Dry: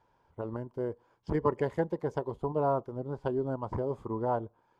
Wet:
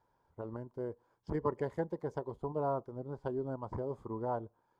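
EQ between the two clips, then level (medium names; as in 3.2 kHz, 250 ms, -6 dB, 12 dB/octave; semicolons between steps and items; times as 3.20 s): peaking EQ 2.7 kHz -6 dB 0.65 oct; -5.5 dB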